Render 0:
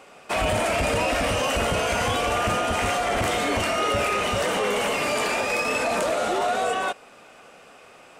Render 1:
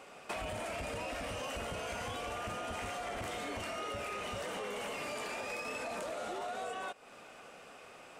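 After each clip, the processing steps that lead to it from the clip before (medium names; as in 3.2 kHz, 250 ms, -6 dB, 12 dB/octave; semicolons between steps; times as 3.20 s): compression 5:1, threshold -34 dBFS, peak gain reduction 13 dB; trim -4.5 dB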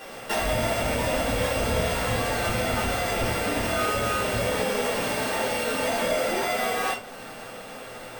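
sorted samples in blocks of 16 samples; reverberation RT60 0.40 s, pre-delay 6 ms, DRR -5.5 dB; trim +6.5 dB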